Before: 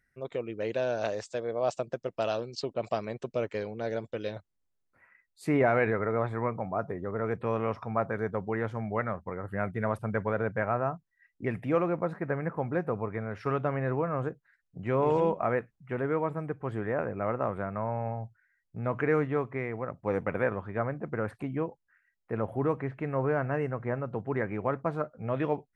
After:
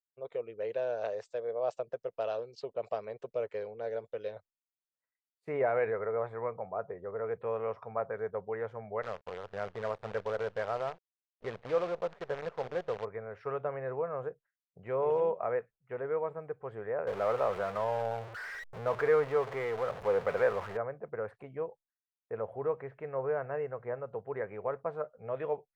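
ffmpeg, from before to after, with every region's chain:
-filter_complex "[0:a]asettb=1/sr,asplit=3[s0][s1][s2];[s0]atrim=end=9.024[s3];[s1]atrim=start=9.02:end=13.05,asetpts=PTS-STARTPTS,afade=t=in:d=0.004:c=qsin,afade=t=out:st=4.026:d=0.004:c=qsin,acrusher=bits=6:dc=4:mix=0:aa=0.000001,lowpass=5000[s4];[s2]atrim=start=13.046[s5];[s3][s4]acrossfade=d=0.004:c1=hsin:c2=qsin[s6];[s6][s5]acrossfade=d=0.004:c1=qsin:c2=hsin,asettb=1/sr,asplit=3[s7][s8][s9];[s7]atrim=end=17.074[s10];[s8]atrim=start=17.07:end=20.77,asetpts=PTS-STARTPTS,afade=t=in:d=0.004:c=qsin,afade=t=out:st=3.696:d=0.004:c=qsin,aeval=exprs='val(0)+0.5*0.0282*sgn(val(0))':c=same,equalizer=f=1400:t=o:w=2.8:g=4.5[s11];[s9]atrim=start=20.766[s12];[s10][s11]acrossfade=d=0.004:c1=hsin:c2=qsin[s13];[s13][s12]acrossfade=d=0.004:c1=qsin:c2=hsin,lowpass=f=2200:p=1,agate=range=0.0224:threshold=0.00501:ratio=3:detection=peak,lowshelf=f=370:t=q:w=3:g=-6.5,volume=0.473"

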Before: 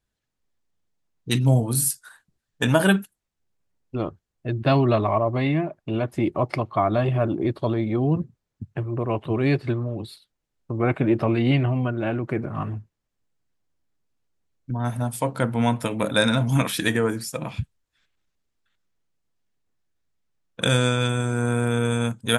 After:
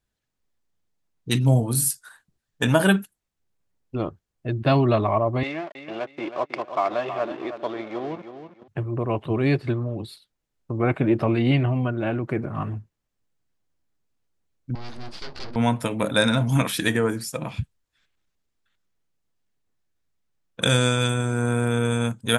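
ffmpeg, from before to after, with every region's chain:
-filter_complex "[0:a]asettb=1/sr,asplit=3[s0][s1][s2];[s0]atrim=end=5.434[s3];[s1]atrim=start=5.43:end=8.68,asetpts=PTS-STARTPTS,afade=t=in:d=0.004:c=qsin,afade=t=out:st=3.246:d=0.004:c=qsin,aeval=exprs='sgn(val(0))*max(abs(val(0))-0.0141,0)':c=same,highpass=450,lowpass=5400,aecho=1:1:320|640|960:0.316|0.0791|0.0198,atrim=end_sample=143325[s4];[s2]atrim=start=8.676[s5];[s3][s4]acrossfade=d=0.004:c1=hsin:c2=qsin[s6];[s6][s5]acrossfade=d=0.004:c1=qsin:c2=hsin,asettb=1/sr,asplit=3[s7][s8][s9];[s7]atrim=end=14.754[s10];[s8]atrim=start=14.75:end=15.56,asetpts=PTS-STARTPTS,afade=t=in:d=0.004:c=qsin,afade=t=out:st=0.806:d=0.004:c=qsin,aeval=exprs='abs(val(0))':c=same,aeval=exprs='(tanh(15.8*val(0)+0.4)-tanh(0.4))/15.8':c=same,lowpass=f=4700:t=q:w=6.4[s11];[s9]atrim=start=15.556[s12];[s10][s11]acrossfade=d=0.004:c1=hsin:c2=qsin[s13];[s13][s12]acrossfade=d=0.004:c1=qsin:c2=hsin,asettb=1/sr,asplit=3[s14][s15][s16];[s14]atrim=end=20.624[s17];[s15]atrim=start=20.62:end=21.14,asetpts=PTS-STARTPTS,afade=t=in:d=0.004:c=qsin,afade=t=out:st=0.516:d=0.004:c=qsin,acrossover=split=7300[s18][s19];[s19]acompressor=threshold=0.00794:ratio=4:attack=1:release=60[s20];[s18][s20]amix=inputs=2:normalize=0,highshelf=f=6600:g=10[s21];[s16]atrim=start=21.136[s22];[s17][s21]acrossfade=d=0.004:c1=hsin:c2=qsin[s23];[s23][s22]acrossfade=d=0.004:c1=qsin:c2=hsin"

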